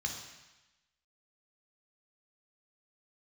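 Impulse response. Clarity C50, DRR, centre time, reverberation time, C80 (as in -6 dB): 5.0 dB, 1.5 dB, 36 ms, 1.0 s, 7.0 dB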